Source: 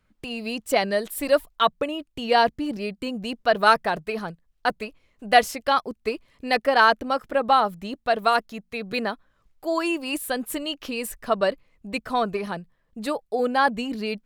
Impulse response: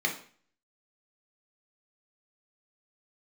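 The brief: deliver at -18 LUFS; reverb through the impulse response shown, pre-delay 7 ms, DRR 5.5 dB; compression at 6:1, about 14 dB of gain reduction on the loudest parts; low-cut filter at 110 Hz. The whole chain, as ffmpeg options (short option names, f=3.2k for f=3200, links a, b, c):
-filter_complex "[0:a]highpass=110,acompressor=threshold=-26dB:ratio=6,asplit=2[a][b];[1:a]atrim=start_sample=2205,adelay=7[c];[b][c]afir=irnorm=-1:irlink=0,volume=-14.5dB[d];[a][d]amix=inputs=2:normalize=0,volume=13dB"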